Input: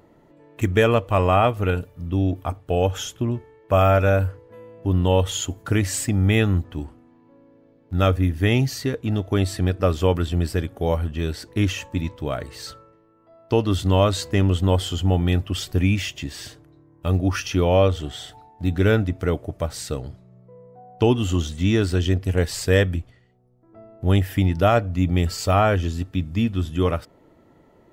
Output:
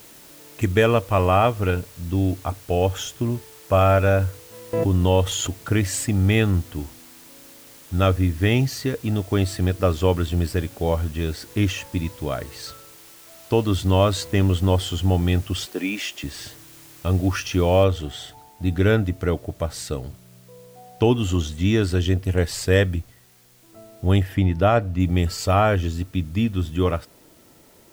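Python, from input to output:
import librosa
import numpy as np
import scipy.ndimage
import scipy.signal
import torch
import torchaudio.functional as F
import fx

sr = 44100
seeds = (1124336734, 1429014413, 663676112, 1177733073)

y = fx.pre_swell(x, sr, db_per_s=24.0, at=(4.73, 5.66))
y = fx.highpass(y, sr, hz=260.0, slope=24, at=(15.66, 16.24))
y = fx.noise_floor_step(y, sr, seeds[0], at_s=17.84, before_db=-47, after_db=-56, tilt_db=0.0)
y = fx.high_shelf(y, sr, hz=4500.0, db=-8.5, at=(24.23, 25.0))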